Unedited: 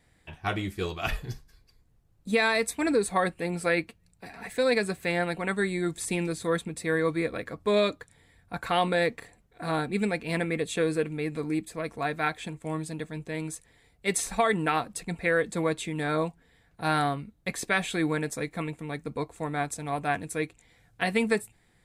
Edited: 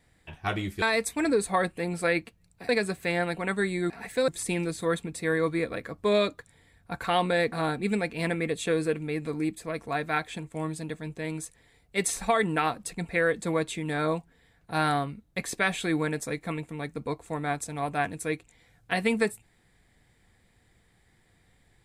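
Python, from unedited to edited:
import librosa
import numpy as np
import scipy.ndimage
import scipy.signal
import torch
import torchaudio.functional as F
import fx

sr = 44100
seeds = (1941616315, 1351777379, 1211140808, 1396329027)

y = fx.edit(x, sr, fx.cut(start_s=0.82, length_s=1.62),
    fx.move(start_s=4.31, length_s=0.38, to_s=5.9),
    fx.cut(start_s=9.14, length_s=0.48), tone=tone)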